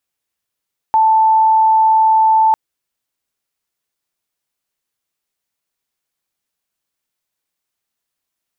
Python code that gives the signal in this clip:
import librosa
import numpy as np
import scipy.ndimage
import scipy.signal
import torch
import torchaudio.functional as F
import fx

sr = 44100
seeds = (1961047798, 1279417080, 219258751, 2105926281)

y = 10.0 ** (-8.0 / 20.0) * np.sin(2.0 * np.pi * (881.0 * (np.arange(round(1.6 * sr)) / sr)))